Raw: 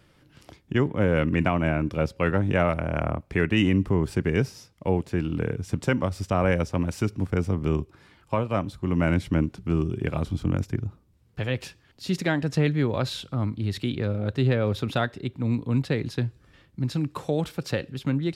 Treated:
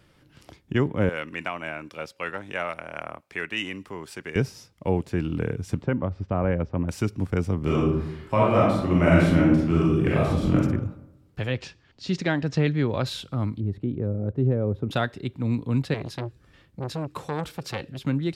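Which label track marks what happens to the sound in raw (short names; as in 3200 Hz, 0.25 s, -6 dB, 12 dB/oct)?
1.090000	4.360000	HPF 1400 Hz 6 dB/oct
5.820000	6.890000	tape spacing loss at 10 kHz 41 dB
7.630000	10.550000	reverb throw, RT60 0.9 s, DRR -6 dB
11.520000	13.060000	LPF 6700 Hz 24 dB/oct
13.600000	14.910000	EQ curve 430 Hz 0 dB, 910 Hz -8 dB, 4500 Hz -29 dB
15.940000	18.010000	core saturation saturates under 990 Hz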